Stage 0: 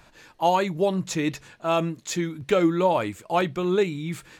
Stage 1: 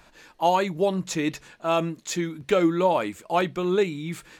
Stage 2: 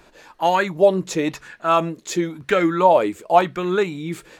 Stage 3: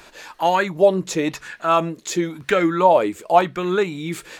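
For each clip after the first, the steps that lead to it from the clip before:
bell 110 Hz -11 dB 0.52 oct
LFO bell 0.96 Hz 370–1800 Hz +11 dB; gain +1.5 dB
mismatched tape noise reduction encoder only

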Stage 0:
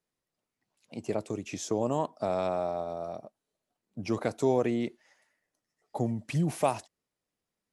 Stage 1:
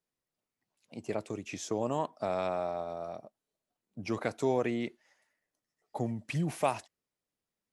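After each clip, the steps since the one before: dynamic EQ 2000 Hz, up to +6 dB, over -47 dBFS, Q 0.7; gain -4 dB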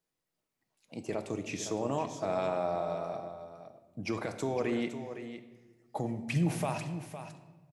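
limiter -25 dBFS, peak gain reduction 9.5 dB; on a send: echo 0.51 s -10.5 dB; on the sum: shoebox room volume 820 m³, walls mixed, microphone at 0.62 m; gain +2 dB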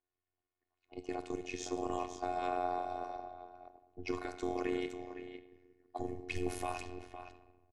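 robotiser 361 Hz; AM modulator 89 Hz, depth 90%; low-pass opened by the level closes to 2300 Hz, open at -34.5 dBFS; gain +2 dB

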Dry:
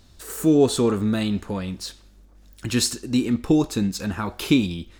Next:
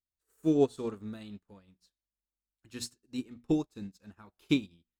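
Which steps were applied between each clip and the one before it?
notches 60/120/180/240 Hz; upward expander 2.5:1, over -40 dBFS; gain -6.5 dB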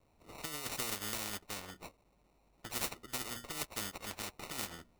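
negative-ratio compressor -37 dBFS, ratio -1; sample-and-hold 27×; spectral compressor 4:1; gain +7.5 dB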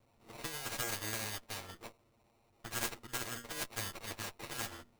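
minimum comb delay 8.7 ms; gain +1.5 dB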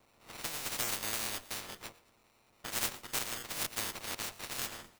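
spectral limiter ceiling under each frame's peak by 15 dB; feedback echo 0.113 s, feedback 39%, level -19 dB; crackling interface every 0.24 s, samples 1024, repeat, from 0.98; gain +3 dB

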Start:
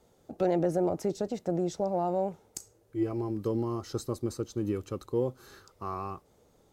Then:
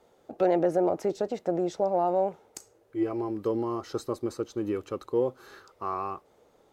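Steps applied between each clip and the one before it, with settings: tone controls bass -12 dB, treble -9 dB; gain +5 dB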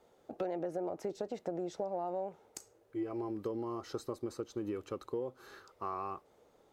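compressor 5:1, threshold -30 dBFS, peak gain reduction 10.5 dB; gain -4 dB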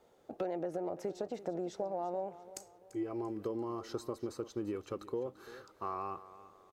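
feedback echo 0.341 s, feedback 36%, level -16 dB

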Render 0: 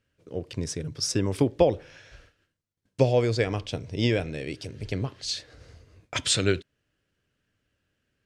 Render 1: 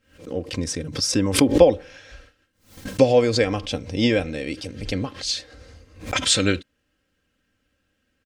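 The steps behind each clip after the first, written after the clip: comb 3.8 ms, depth 59%; backwards sustainer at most 130 dB/s; gain +4 dB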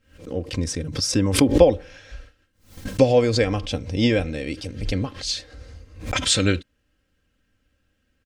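low shelf 92 Hz +10.5 dB; gain -1 dB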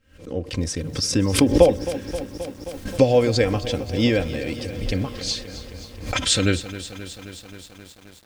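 lo-fi delay 0.265 s, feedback 80%, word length 7-bit, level -14 dB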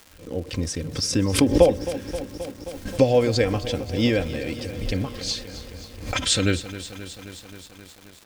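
crackle 260/s -34 dBFS; gain -1.5 dB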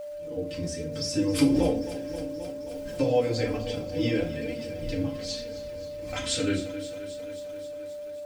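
FDN reverb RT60 0.39 s, low-frequency decay 1.5×, high-frequency decay 0.85×, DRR -3 dB; flange 1.1 Hz, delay 4.1 ms, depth 2.5 ms, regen +42%; whine 590 Hz -27 dBFS; gain -8 dB

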